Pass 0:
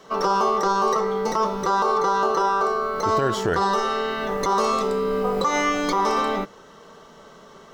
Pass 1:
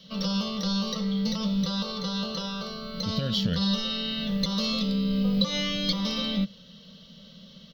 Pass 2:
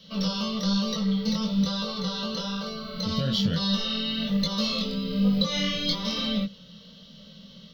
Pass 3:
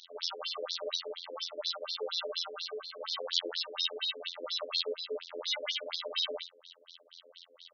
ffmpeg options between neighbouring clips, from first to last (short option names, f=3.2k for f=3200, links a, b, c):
-af "firequalizer=gain_entry='entry(130,0);entry(190,9);entry(370,-26);entry(530,-5);entry(770,-24);entry(2100,-9);entry(3100,7);entry(4500,8);entry(7800,-23);entry(13000,-3)':delay=0.05:min_phase=1"
-af "flanger=delay=18.5:depth=5.1:speed=1.1,volume=4dB"
-af "asoftclip=type=hard:threshold=-22.5dB,afftfilt=real='hypot(re,im)*cos(PI*b)':imag='0':win_size=2048:overlap=0.75,afftfilt=real='re*between(b*sr/1024,390*pow(5000/390,0.5+0.5*sin(2*PI*4.2*pts/sr))/1.41,390*pow(5000/390,0.5+0.5*sin(2*PI*4.2*pts/sr))*1.41)':imag='im*between(b*sr/1024,390*pow(5000/390,0.5+0.5*sin(2*PI*4.2*pts/sr))/1.41,390*pow(5000/390,0.5+0.5*sin(2*PI*4.2*pts/sr))*1.41)':win_size=1024:overlap=0.75,volume=5.5dB"